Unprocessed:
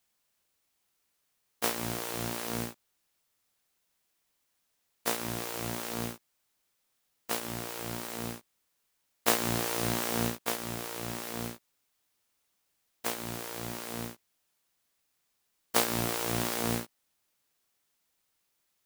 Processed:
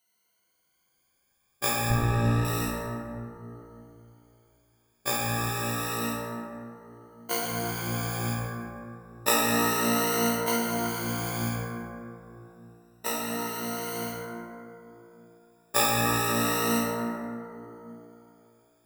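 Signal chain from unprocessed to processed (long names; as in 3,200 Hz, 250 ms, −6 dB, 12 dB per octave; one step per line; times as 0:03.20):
rippled gain that drifts along the octave scale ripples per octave 1.9, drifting +0.29 Hz, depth 20 dB
0:01.90–0:02.45: RIAA equalisation playback
dense smooth reverb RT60 3.1 s, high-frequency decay 0.3×, DRR −5 dB
level −3.5 dB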